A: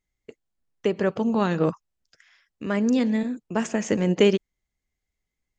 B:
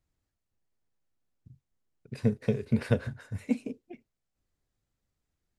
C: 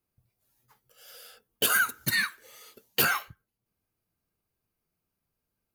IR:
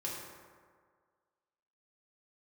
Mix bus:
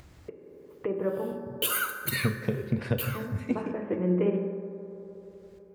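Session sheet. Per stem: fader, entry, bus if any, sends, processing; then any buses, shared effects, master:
-7.5 dB, 0.00 s, muted 1.32–3.15 s, bus A, send -3 dB, Bessel low-pass 1.3 kHz, order 8
+2.0 dB, 0.00 s, no bus, send -8 dB, treble shelf 6 kHz -11 dB; compression, threshold -27 dBFS, peak gain reduction 9 dB
0.90 s -10.5 dB -> 1.24 s 0 dB -> 2.41 s 0 dB -> 2.97 s -12 dB, 0.00 s, bus A, send -11.5 dB, three bands expanded up and down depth 40%
bus A: 0.0 dB, static phaser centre 1.1 kHz, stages 8; compression 2.5:1, threshold -30 dBFS, peak gain reduction 7.5 dB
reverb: on, RT60 1.8 s, pre-delay 3 ms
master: high-pass 51 Hz; upward compressor, threshold -32 dBFS

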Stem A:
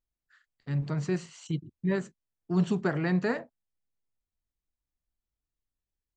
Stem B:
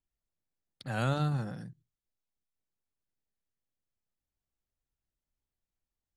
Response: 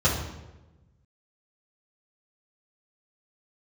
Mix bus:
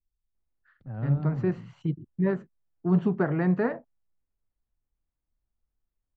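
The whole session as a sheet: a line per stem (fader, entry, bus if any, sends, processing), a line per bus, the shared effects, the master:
+3.0 dB, 0.35 s, no send, none
-11.5 dB, 0.00 s, no send, tilt EQ -4 dB/octave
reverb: none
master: low-pass 1.5 kHz 12 dB/octave

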